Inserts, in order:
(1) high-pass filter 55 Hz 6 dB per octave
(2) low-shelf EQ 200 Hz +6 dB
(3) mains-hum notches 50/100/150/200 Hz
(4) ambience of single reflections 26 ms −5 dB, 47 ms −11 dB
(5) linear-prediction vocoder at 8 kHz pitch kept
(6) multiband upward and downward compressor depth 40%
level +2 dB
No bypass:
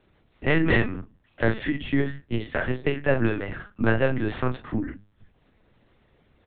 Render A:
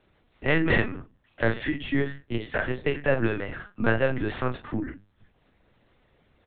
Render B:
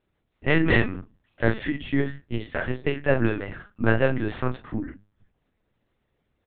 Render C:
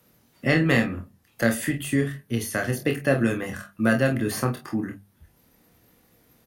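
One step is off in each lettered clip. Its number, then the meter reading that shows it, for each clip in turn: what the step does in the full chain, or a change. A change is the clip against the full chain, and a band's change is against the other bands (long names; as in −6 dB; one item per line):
2, 125 Hz band −2.5 dB
6, change in crest factor +3.0 dB
5, 4 kHz band +2.0 dB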